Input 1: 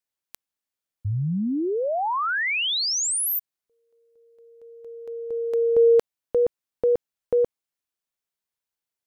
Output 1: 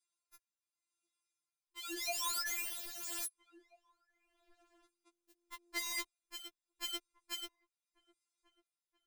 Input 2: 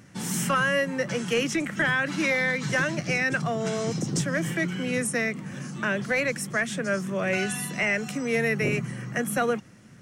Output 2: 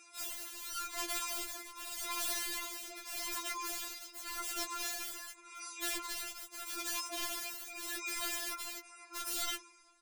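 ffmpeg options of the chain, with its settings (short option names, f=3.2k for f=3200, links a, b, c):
-filter_complex "[0:a]afftfilt=real='re*between(b*sr/4096,470,11000)':imag='im*between(b*sr/4096,470,11000)':win_size=4096:overlap=0.75,highshelf=f=4.4k:g=6,aecho=1:1:3.7:0.98,acompressor=threshold=-24dB:ratio=4:attack=27:release=39:knee=6:detection=peak,asuperstop=centerf=1900:order=4:qfactor=8,aeval=exprs='(mod(23.7*val(0)+1,2)-1)/23.7':c=same,afreqshift=-290,asplit=2[a][b];[b]adelay=1633,volume=-21dB,highshelf=f=4k:g=-36.7[c];[a][c]amix=inputs=2:normalize=0,tremolo=f=0.84:d=0.69,afftfilt=real='re*4*eq(mod(b,16),0)':imag='im*4*eq(mod(b,16),0)':win_size=2048:overlap=0.75,volume=-1.5dB"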